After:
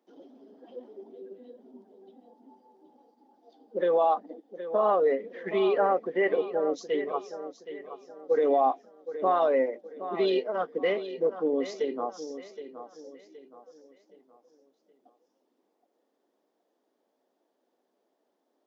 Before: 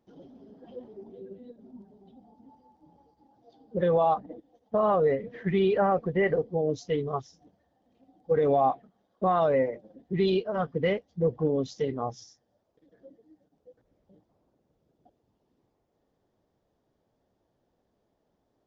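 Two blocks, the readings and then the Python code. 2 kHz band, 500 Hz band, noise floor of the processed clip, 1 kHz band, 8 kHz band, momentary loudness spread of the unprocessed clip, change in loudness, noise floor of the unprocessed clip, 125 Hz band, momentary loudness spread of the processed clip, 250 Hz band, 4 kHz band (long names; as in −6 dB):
+0.5 dB, +0.5 dB, −77 dBFS, +0.5 dB, can't be measured, 21 LU, −0.5 dB, −76 dBFS, below −15 dB, 21 LU, −3.5 dB, +0.5 dB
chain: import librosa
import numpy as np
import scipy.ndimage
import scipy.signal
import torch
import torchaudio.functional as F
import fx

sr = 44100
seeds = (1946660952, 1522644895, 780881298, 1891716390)

y = scipy.signal.sosfilt(scipy.signal.butter(6, 250.0, 'highpass', fs=sr, output='sos'), x)
y = fx.echo_feedback(y, sr, ms=770, feedback_pct=37, wet_db=-12)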